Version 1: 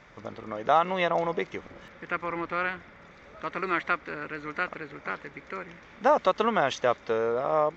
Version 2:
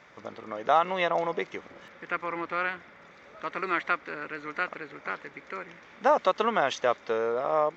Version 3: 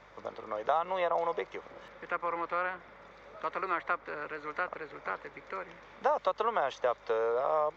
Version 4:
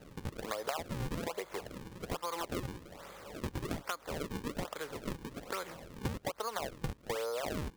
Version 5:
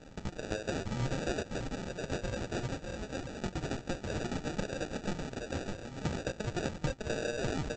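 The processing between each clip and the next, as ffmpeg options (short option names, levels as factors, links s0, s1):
-af "highpass=f=260:p=1"
-filter_complex "[0:a]equalizer=f=125:t=o:w=1:g=4,equalizer=f=500:t=o:w=1:g=7,equalizer=f=1000:t=o:w=1:g=7,equalizer=f=4000:t=o:w=1:g=4,acrossover=split=170|380|1800[s0][s1][s2][s3];[s0]acompressor=threshold=0.00224:ratio=4[s4];[s1]acompressor=threshold=0.00447:ratio=4[s5];[s2]acompressor=threshold=0.1:ratio=4[s6];[s3]acompressor=threshold=0.0112:ratio=4[s7];[s4][s5][s6][s7]amix=inputs=4:normalize=0,aeval=exprs='val(0)+0.001*(sin(2*PI*50*n/s)+sin(2*PI*2*50*n/s)/2+sin(2*PI*3*50*n/s)/3+sin(2*PI*4*50*n/s)/4+sin(2*PI*5*50*n/s)/5)':c=same,volume=0.473"
-af "acrusher=samples=38:mix=1:aa=0.000001:lfo=1:lforange=60.8:lforate=1.2,acompressor=threshold=0.0141:ratio=10,volume=1.5"
-af "aecho=1:1:603:0.631,flanger=delay=3:depth=7.4:regen=45:speed=0.62:shape=triangular,aresample=16000,acrusher=samples=15:mix=1:aa=0.000001,aresample=44100,volume=2"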